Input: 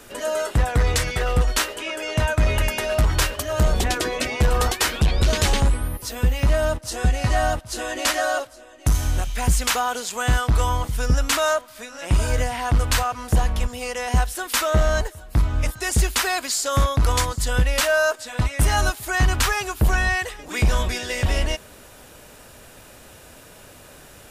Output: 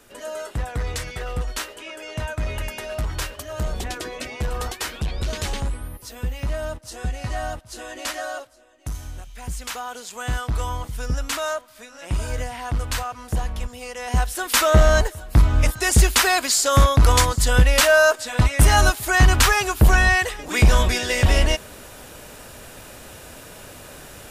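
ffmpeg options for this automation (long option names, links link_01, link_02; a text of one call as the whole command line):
ffmpeg -i in.wav -af "volume=11.5dB,afade=type=out:start_time=8.21:duration=1.06:silence=0.446684,afade=type=in:start_time=9.27:duration=1.14:silence=0.354813,afade=type=in:start_time=13.96:duration=0.71:silence=0.316228" out.wav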